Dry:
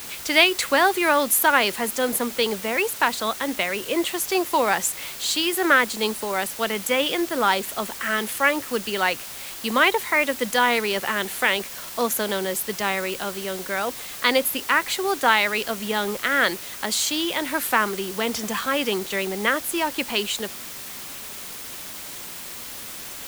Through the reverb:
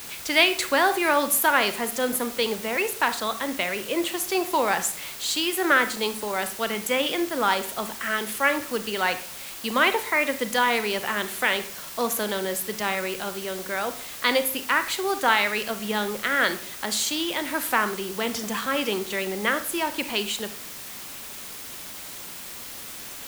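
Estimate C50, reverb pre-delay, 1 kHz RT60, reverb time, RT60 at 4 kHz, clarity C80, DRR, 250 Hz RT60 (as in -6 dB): 12.5 dB, 30 ms, 0.50 s, 0.55 s, 0.40 s, 17.0 dB, 10.0 dB, 0.70 s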